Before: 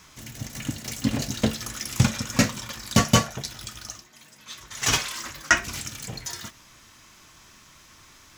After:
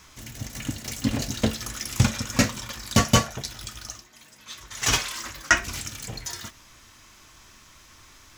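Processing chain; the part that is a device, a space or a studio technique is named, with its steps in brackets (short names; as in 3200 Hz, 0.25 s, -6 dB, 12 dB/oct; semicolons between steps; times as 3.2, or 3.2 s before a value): low shelf boost with a cut just above (low shelf 70 Hz +7 dB; bell 160 Hz -5 dB 0.61 oct)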